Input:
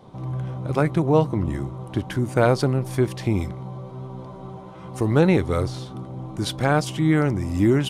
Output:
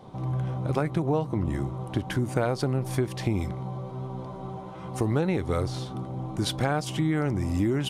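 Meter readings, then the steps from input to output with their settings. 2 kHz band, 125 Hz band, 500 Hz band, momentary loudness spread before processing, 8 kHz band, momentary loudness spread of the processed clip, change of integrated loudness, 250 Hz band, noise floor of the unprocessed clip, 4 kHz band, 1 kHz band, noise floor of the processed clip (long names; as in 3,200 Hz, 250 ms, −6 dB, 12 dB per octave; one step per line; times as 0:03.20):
−6.5 dB, −4.5 dB, −7.0 dB, 17 LU, −2.5 dB, 10 LU, −6.5 dB, −5.5 dB, −39 dBFS, −2.5 dB, −5.0 dB, −39 dBFS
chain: parametric band 770 Hz +3 dB 0.2 octaves
downward compressor 6 to 1, threshold −22 dBFS, peak gain reduction 10 dB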